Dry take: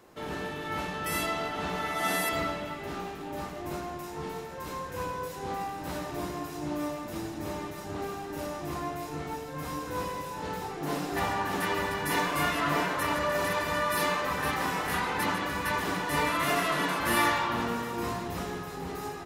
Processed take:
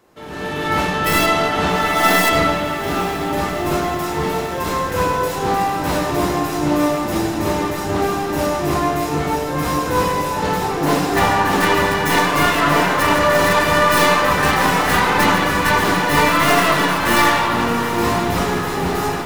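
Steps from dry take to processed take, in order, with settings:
stylus tracing distortion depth 0.11 ms
automatic gain control gain up to 16 dB
feedback delay with all-pass diffusion 834 ms, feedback 75%, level −14 dB

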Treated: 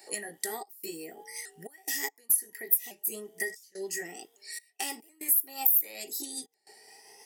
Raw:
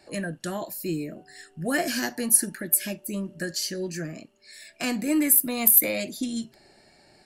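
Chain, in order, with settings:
pitch shifter swept by a sawtooth +3 semitones, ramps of 727 ms
high-shelf EQ 3,500 Hz +6.5 dB
downward compressor 5 to 1, threshold −33 dBFS, peak gain reduction 22 dB
gate pattern "xxx.xxxx.x.xxx" 72 BPM −24 dB
RIAA equalisation recording
hollow resonant body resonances 430/800/1,900 Hz, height 16 dB, ringing for 40 ms
level −7 dB

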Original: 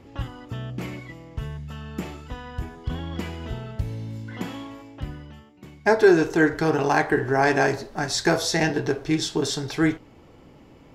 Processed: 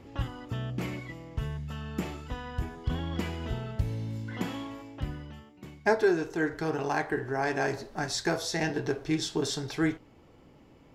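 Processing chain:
speech leveller within 5 dB 0.5 s
level −6.5 dB

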